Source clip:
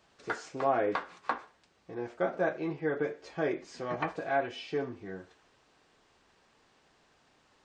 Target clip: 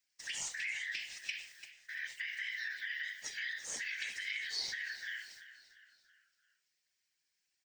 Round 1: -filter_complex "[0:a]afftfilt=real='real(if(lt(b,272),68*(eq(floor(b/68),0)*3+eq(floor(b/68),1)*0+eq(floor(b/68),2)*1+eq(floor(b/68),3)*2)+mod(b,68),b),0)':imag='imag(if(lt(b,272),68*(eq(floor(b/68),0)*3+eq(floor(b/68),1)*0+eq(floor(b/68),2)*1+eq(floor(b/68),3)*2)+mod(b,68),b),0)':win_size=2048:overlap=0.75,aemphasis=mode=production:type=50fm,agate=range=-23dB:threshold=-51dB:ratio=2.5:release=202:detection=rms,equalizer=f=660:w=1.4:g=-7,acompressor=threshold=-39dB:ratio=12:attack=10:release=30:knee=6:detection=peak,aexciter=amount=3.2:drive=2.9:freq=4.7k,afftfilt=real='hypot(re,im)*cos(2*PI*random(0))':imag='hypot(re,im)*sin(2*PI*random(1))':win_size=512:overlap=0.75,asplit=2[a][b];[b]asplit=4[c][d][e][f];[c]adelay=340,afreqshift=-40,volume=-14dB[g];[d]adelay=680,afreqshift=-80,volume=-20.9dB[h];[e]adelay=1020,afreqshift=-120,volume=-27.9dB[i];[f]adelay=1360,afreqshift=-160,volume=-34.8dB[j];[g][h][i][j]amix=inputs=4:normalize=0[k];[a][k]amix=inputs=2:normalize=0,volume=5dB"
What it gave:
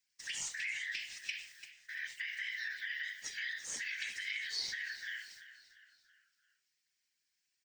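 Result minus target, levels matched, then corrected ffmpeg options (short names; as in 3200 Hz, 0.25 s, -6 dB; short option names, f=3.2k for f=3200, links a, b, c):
500 Hz band -4.0 dB
-filter_complex "[0:a]afftfilt=real='real(if(lt(b,272),68*(eq(floor(b/68),0)*3+eq(floor(b/68),1)*0+eq(floor(b/68),2)*1+eq(floor(b/68),3)*2)+mod(b,68),b),0)':imag='imag(if(lt(b,272),68*(eq(floor(b/68),0)*3+eq(floor(b/68),1)*0+eq(floor(b/68),2)*1+eq(floor(b/68),3)*2)+mod(b,68),b),0)':win_size=2048:overlap=0.75,aemphasis=mode=production:type=50fm,agate=range=-23dB:threshold=-51dB:ratio=2.5:release=202:detection=rms,acompressor=threshold=-39dB:ratio=12:attack=10:release=30:knee=6:detection=peak,aexciter=amount=3.2:drive=2.9:freq=4.7k,afftfilt=real='hypot(re,im)*cos(2*PI*random(0))':imag='hypot(re,im)*sin(2*PI*random(1))':win_size=512:overlap=0.75,asplit=2[a][b];[b]asplit=4[c][d][e][f];[c]adelay=340,afreqshift=-40,volume=-14dB[g];[d]adelay=680,afreqshift=-80,volume=-20.9dB[h];[e]adelay=1020,afreqshift=-120,volume=-27.9dB[i];[f]adelay=1360,afreqshift=-160,volume=-34.8dB[j];[g][h][i][j]amix=inputs=4:normalize=0[k];[a][k]amix=inputs=2:normalize=0,volume=5dB"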